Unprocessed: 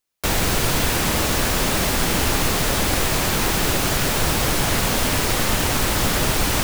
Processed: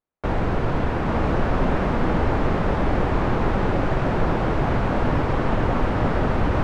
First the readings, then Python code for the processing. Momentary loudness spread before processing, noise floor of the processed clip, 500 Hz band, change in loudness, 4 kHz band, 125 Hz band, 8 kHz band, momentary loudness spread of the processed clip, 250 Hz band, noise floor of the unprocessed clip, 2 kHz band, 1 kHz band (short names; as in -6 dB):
0 LU, -24 dBFS, +1.0 dB, -3.5 dB, -18.0 dB, +1.5 dB, under -30 dB, 2 LU, +1.5 dB, -22 dBFS, -6.5 dB, -0.5 dB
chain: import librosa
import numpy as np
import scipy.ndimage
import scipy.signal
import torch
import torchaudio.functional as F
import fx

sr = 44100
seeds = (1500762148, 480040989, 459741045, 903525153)

p1 = scipy.signal.sosfilt(scipy.signal.butter(2, 1200.0, 'lowpass', fs=sr, output='sos'), x)
y = p1 + fx.echo_single(p1, sr, ms=855, db=-3.5, dry=0)